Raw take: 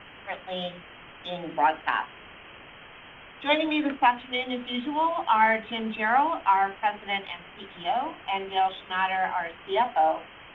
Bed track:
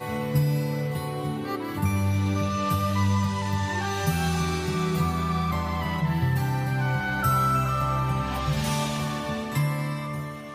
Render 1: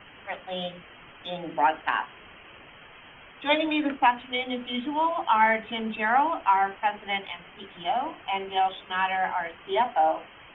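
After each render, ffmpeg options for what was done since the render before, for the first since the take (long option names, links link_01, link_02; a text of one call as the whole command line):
ffmpeg -i in.wav -af "afftdn=noise_reduction=6:noise_floor=-48" out.wav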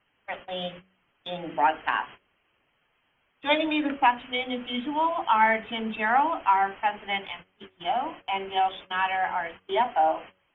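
ffmpeg -i in.wav -af "agate=range=-22dB:threshold=-41dB:ratio=16:detection=peak,bandreject=frequency=93.65:width_type=h:width=4,bandreject=frequency=187.3:width_type=h:width=4,bandreject=frequency=280.95:width_type=h:width=4,bandreject=frequency=374.6:width_type=h:width=4,bandreject=frequency=468.25:width_type=h:width=4,bandreject=frequency=561.9:width_type=h:width=4" out.wav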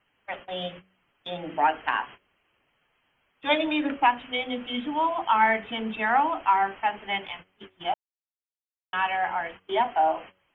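ffmpeg -i in.wav -filter_complex "[0:a]asplit=3[link_01][link_02][link_03];[link_01]atrim=end=7.94,asetpts=PTS-STARTPTS,afade=type=out:start_time=7.936:duration=0.004:curve=hsin[link_04];[link_02]atrim=start=7.94:end=8.93,asetpts=PTS-STARTPTS,volume=0[link_05];[link_03]atrim=start=8.93,asetpts=PTS-STARTPTS,afade=type=in:duration=0.004:curve=hsin[link_06];[link_04][link_05][link_06]concat=n=3:v=0:a=1" out.wav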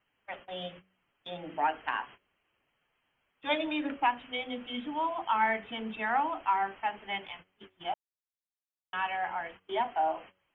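ffmpeg -i in.wav -af "volume=-6.5dB" out.wav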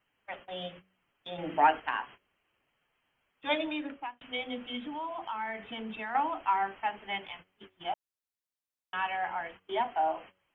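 ffmpeg -i in.wav -filter_complex "[0:a]asettb=1/sr,asplit=3[link_01][link_02][link_03];[link_01]atrim=end=1.384[link_04];[link_02]atrim=start=1.38:end=1.8,asetpts=PTS-STARTPTS,afade=type=in:duration=0.004:curve=qsin,afade=type=out:start_time=0.416:duration=0.004:curve=qsin,acontrast=45[link_05];[link_03]atrim=start=1.796[link_06];[link_04][link_05]acrossfade=duration=0.004:curve1=hsin:curve2=qsin[link_07];[link_07][link_06]acrossfade=duration=0.004:curve1=qsin:curve2=hsin,asettb=1/sr,asplit=3[link_08][link_09][link_10];[link_08]atrim=end=4.774[link_11];[link_09]atrim=start=4.77:end=6.15,asetpts=PTS-STARTPTS,afade=type=in:duration=0.004:curve=qsin,afade=type=out:start_time=1.376:duration=0.004:curve=qsin,acompressor=threshold=-35dB:ratio=3:attack=3.2:release=140:knee=1:detection=peak[link_12];[link_10]atrim=start=6.146[link_13];[link_11][link_12]acrossfade=duration=0.004:curve1=hsin:curve2=qsin[link_14];[link_14][link_13]acrossfade=duration=0.004:curve1=qsin:curve2=hsin,asplit=2[link_15][link_16];[link_15]atrim=end=4.21,asetpts=PTS-STARTPTS,afade=type=out:start_time=3.6:duration=0.61[link_17];[link_16]atrim=start=4.21,asetpts=PTS-STARTPTS,afade=type=in:duration=0.004:curve=hsin[link_18];[link_17][link_18]concat=n=2:v=0:a=1" out.wav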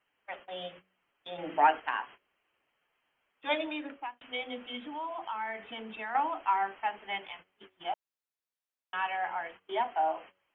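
ffmpeg -i in.wav -af "bass=frequency=250:gain=-9,treble=frequency=4000:gain=-5" out.wav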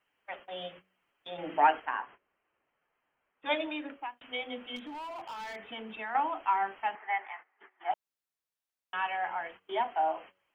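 ffmpeg -i in.wav -filter_complex "[0:a]asettb=1/sr,asplit=3[link_01][link_02][link_03];[link_01]atrim=end=1.854[link_04];[link_02]atrim=start=1.85:end=3.46,asetpts=PTS-STARTPTS,afade=type=in:duration=0.004:curve=qsin,afade=type=out:start_time=1.606:duration=0.004:curve=qsin,lowpass=1900[link_05];[link_03]atrim=start=3.456[link_06];[link_04][link_05]acrossfade=duration=0.004:curve1=hsin:curve2=qsin[link_07];[link_07][link_06]acrossfade=duration=0.004:curve1=qsin:curve2=hsin,asettb=1/sr,asplit=3[link_08][link_09][link_10];[link_08]atrim=end=4.764[link_11];[link_09]atrim=start=4.76:end=5.56,asetpts=PTS-STARTPTS,afade=type=in:duration=0.004:curve=qsin,afade=type=out:start_time=0.796:duration=0.004:curve=qsin,asoftclip=type=hard:threshold=-38.5dB[link_12];[link_10]atrim=start=5.556[link_13];[link_11][link_12]acrossfade=duration=0.004:curve1=hsin:curve2=qsin[link_14];[link_14][link_13]acrossfade=duration=0.004:curve1=qsin:curve2=hsin,asettb=1/sr,asplit=3[link_15][link_16][link_17];[link_15]atrim=end=6.954[link_18];[link_16]atrim=start=6.95:end=7.91,asetpts=PTS-STARTPTS,afade=type=in:duration=0.004:curve=qsin,afade=type=out:start_time=0.956:duration=0.004:curve=qsin,highpass=frequency=360:width=0.5412,highpass=frequency=360:width=1.3066,equalizer=frequency=380:width_type=q:width=4:gain=-6,equalizer=frequency=540:width_type=q:width=4:gain=-9,equalizer=frequency=810:width_type=q:width=4:gain=8,equalizer=frequency=1200:width_type=q:width=4:gain=4,equalizer=frequency=1900:width_type=q:width=4:gain=10,lowpass=frequency=2100:width=0.5412,lowpass=frequency=2100:width=1.3066[link_19];[link_17]atrim=start=7.906[link_20];[link_18][link_19]acrossfade=duration=0.004:curve1=hsin:curve2=qsin[link_21];[link_21][link_20]acrossfade=duration=0.004:curve1=qsin:curve2=hsin" out.wav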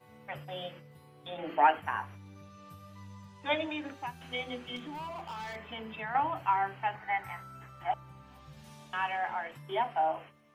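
ffmpeg -i in.wav -i bed.wav -filter_complex "[1:a]volume=-26dB[link_01];[0:a][link_01]amix=inputs=2:normalize=0" out.wav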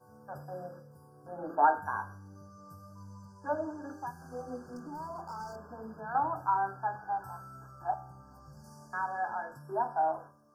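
ffmpeg -i in.wav -af "afftfilt=real='re*(1-between(b*sr/4096,1700,4500))':imag='im*(1-between(b*sr/4096,1700,4500))':win_size=4096:overlap=0.75,bandreject=frequency=75.96:width_type=h:width=4,bandreject=frequency=151.92:width_type=h:width=4,bandreject=frequency=227.88:width_type=h:width=4,bandreject=frequency=303.84:width_type=h:width=4,bandreject=frequency=379.8:width_type=h:width=4,bandreject=frequency=455.76:width_type=h:width=4,bandreject=frequency=531.72:width_type=h:width=4,bandreject=frequency=607.68:width_type=h:width=4,bandreject=frequency=683.64:width_type=h:width=4,bandreject=frequency=759.6:width_type=h:width=4,bandreject=frequency=835.56:width_type=h:width=4,bandreject=frequency=911.52:width_type=h:width=4,bandreject=frequency=987.48:width_type=h:width=4,bandreject=frequency=1063.44:width_type=h:width=4,bandreject=frequency=1139.4:width_type=h:width=4,bandreject=frequency=1215.36:width_type=h:width=4,bandreject=frequency=1291.32:width_type=h:width=4,bandreject=frequency=1367.28:width_type=h:width=4,bandreject=frequency=1443.24:width_type=h:width=4,bandreject=frequency=1519.2:width_type=h:width=4,bandreject=frequency=1595.16:width_type=h:width=4,bandreject=frequency=1671.12:width_type=h:width=4,bandreject=frequency=1747.08:width_type=h:width=4,bandreject=frequency=1823.04:width_type=h:width=4,bandreject=frequency=1899:width_type=h:width=4,bandreject=frequency=1974.96:width_type=h:width=4,bandreject=frequency=2050.92:width_type=h:width=4,bandreject=frequency=2126.88:width_type=h:width=4,bandreject=frequency=2202.84:width_type=h:width=4,bandreject=frequency=2278.8:width_type=h:width=4,bandreject=frequency=2354.76:width_type=h:width=4,bandreject=frequency=2430.72:width_type=h:width=4,bandreject=frequency=2506.68:width_type=h:width=4,bandreject=frequency=2582.64:width_type=h:width=4,bandreject=frequency=2658.6:width_type=h:width=4" out.wav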